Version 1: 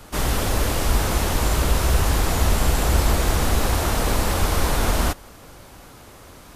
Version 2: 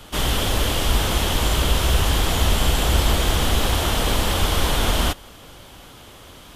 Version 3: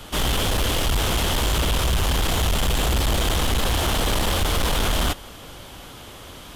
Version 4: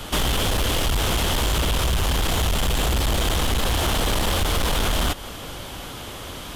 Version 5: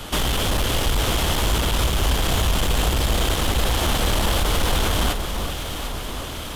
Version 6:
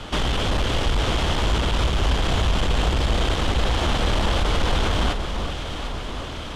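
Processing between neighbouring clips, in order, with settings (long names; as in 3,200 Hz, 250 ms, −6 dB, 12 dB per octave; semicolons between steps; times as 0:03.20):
parametric band 3,200 Hz +11 dB 0.43 octaves
soft clipping −20 dBFS, distortion −10 dB; level +3 dB
downward compressor, threshold −25 dBFS, peak gain reduction 6.5 dB; level +5.5 dB
delay that swaps between a low-pass and a high-pass 373 ms, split 1,400 Hz, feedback 78%, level −7 dB
high-frequency loss of the air 97 metres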